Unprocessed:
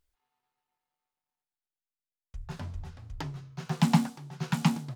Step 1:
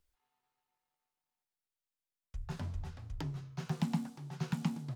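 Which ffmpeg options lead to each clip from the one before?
ffmpeg -i in.wav -filter_complex "[0:a]acrossover=split=470|6300[link_01][link_02][link_03];[link_01]acompressor=threshold=-30dB:ratio=4[link_04];[link_02]acompressor=threshold=-46dB:ratio=4[link_05];[link_03]acompressor=threshold=-60dB:ratio=4[link_06];[link_04][link_05][link_06]amix=inputs=3:normalize=0,volume=-1dB" out.wav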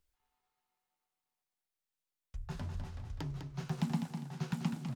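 ffmpeg -i in.wav -af "aecho=1:1:202|404|606|808:0.447|0.138|0.0429|0.0133,volume=-1dB" out.wav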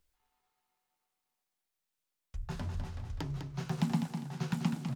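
ffmpeg -i in.wav -af "bandreject=frequency=50:width_type=h:width=6,bandreject=frequency=100:width_type=h:width=6,bandreject=frequency=150:width_type=h:width=6,volume=3.5dB" out.wav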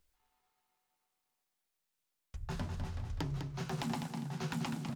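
ffmpeg -i in.wav -af "afftfilt=real='re*lt(hypot(re,im),0.2)':imag='im*lt(hypot(re,im),0.2)':win_size=1024:overlap=0.75,volume=1dB" out.wav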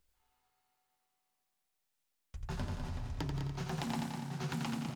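ffmpeg -i in.wav -af "aecho=1:1:87|174|261|348|435|522|609:0.531|0.297|0.166|0.0932|0.0522|0.0292|0.0164,volume=-1dB" out.wav

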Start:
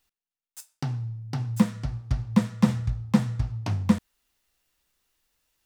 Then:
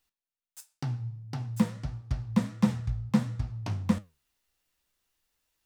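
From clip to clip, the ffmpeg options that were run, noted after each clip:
ffmpeg -i in.wav -af "flanger=delay=9.4:depth=9.5:regen=75:speed=1.5:shape=triangular" out.wav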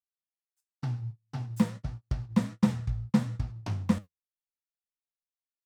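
ffmpeg -i in.wav -af "agate=range=-34dB:threshold=-36dB:ratio=16:detection=peak" out.wav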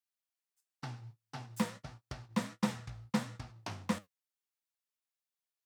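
ffmpeg -i in.wav -af "highpass=frequency=650:poles=1,volume=1.5dB" out.wav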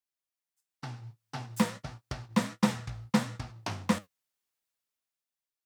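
ffmpeg -i in.wav -af "dynaudnorm=framelen=210:gausssize=9:maxgain=8.5dB,volume=-2dB" out.wav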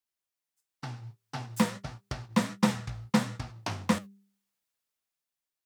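ffmpeg -i in.wav -af "bandreject=frequency=198.4:width_type=h:width=4,bandreject=frequency=396.8:width_type=h:width=4,volume=1.5dB" out.wav

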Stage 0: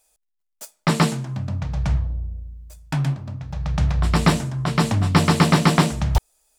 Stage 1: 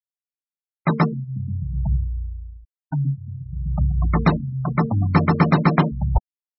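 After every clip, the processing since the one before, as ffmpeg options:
ffmpeg -i in.wav -af "afftfilt=real='re*gte(hypot(re,im),0.141)':imag='im*gte(hypot(re,im),0.141)':win_size=1024:overlap=0.75" out.wav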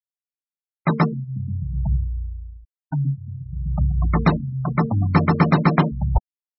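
ffmpeg -i in.wav -af anull out.wav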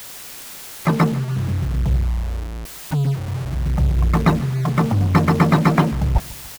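ffmpeg -i in.wav -filter_complex "[0:a]aeval=exprs='val(0)+0.5*0.0794*sgn(val(0))':channel_layout=same,asplit=2[link_01][link_02];[link_02]acrusher=bits=3:mix=0:aa=0.000001,volume=-11.5dB[link_03];[link_01][link_03]amix=inputs=2:normalize=0,aecho=1:1:147|294|441|588:0.0891|0.0472|0.025|0.0133,volume=-2dB" out.wav

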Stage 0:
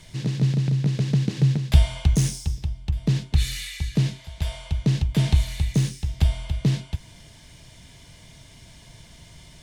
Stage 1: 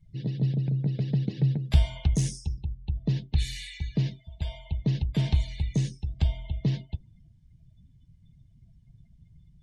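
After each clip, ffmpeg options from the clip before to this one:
ffmpeg -i in.wav -af "afftdn=noise_reduction=31:noise_floor=-40,volume=-5dB" out.wav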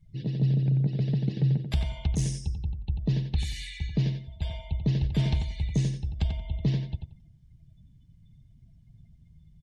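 ffmpeg -i in.wav -filter_complex "[0:a]alimiter=limit=-16dB:level=0:latency=1:release=391,asplit=2[link_01][link_02];[link_02]adelay=90,lowpass=frequency=4300:poles=1,volume=-6dB,asplit=2[link_03][link_04];[link_04]adelay=90,lowpass=frequency=4300:poles=1,volume=0.22,asplit=2[link_05][link_06];[link_06]adelay=90,lowpass=frequency=4300:poles=1,volume=0.22[link_07];[link_03][link_05][link_07]amix=inputs=3:normalize=0[link_08];[link_01][link_08]amix=inputs=2:normalize=0" out.wav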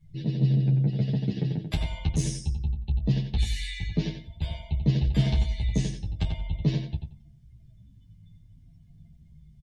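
ffmpeg -i in.wav -filter_complex "[0:a]asplit=2[link_01][link_02];[link_02]adelay=19,volume=-9dB[link_03];[link_01][link_03]amix=inputs=2:normalize=0,asplit=2[link_04][link_05];[link_05]adelay=9.7,afreqshift=-0.45[link_06];[link_04][link_06]amix=inputs=2:normalize=1,volume=5dB" out.wav

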